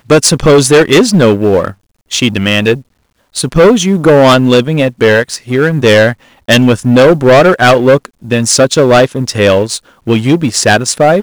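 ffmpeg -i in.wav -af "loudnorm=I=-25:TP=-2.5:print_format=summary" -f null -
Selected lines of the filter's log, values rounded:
Input Integrated:     -8.7 LUFS
Input True Peak:      +0.8 dBTP
Input LRA:             2.3 LU
Input Threshold:     -19.0 LUFS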